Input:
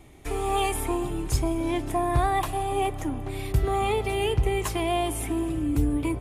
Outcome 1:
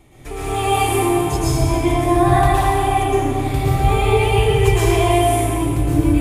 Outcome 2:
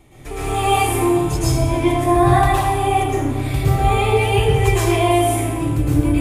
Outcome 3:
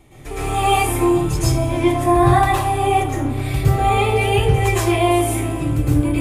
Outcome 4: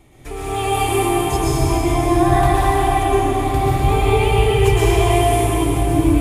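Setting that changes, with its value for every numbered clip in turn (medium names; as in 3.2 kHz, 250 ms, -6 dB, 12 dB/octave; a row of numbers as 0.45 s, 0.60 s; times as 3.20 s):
plate-style reverb, RT60: 2.4 s, 1.1 s, 0.53 s, 5.1 s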